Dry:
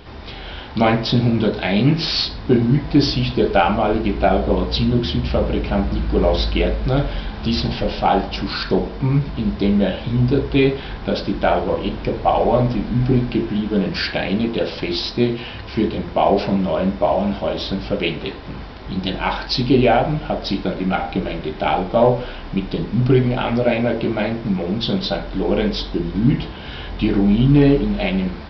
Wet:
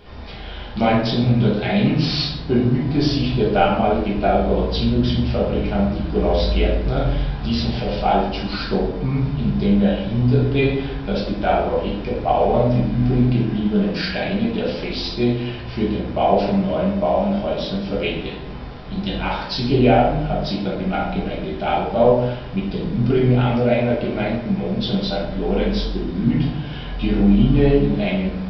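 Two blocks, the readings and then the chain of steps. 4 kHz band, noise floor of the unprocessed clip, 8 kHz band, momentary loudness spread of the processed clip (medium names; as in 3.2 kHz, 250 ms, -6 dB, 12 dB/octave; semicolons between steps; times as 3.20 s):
-3.0 dB, -32 dBFS, no reading, 8 LU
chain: simulated room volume 170 m³, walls mixed, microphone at 1.3 m; trim -7 dB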